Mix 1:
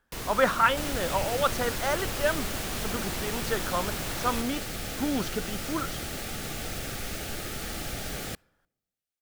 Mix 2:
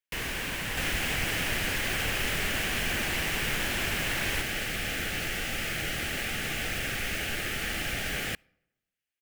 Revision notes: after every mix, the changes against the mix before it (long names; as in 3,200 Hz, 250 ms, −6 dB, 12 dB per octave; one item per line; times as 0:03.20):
speech: muted
master: add flat-topped bell 2,200 Hz +9.5 dB 1.2 octaves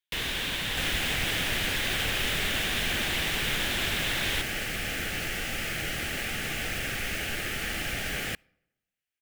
first sound: add parametric band 3,600 Hz +12 dB 0.41 octaves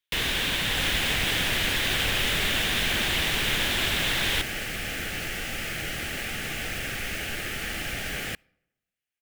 first sound +4.5 dB